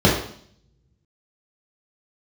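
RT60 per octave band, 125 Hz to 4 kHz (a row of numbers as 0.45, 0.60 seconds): 1.0, 0.75, 0.60, 0.55, 0.55, 0.65 seconds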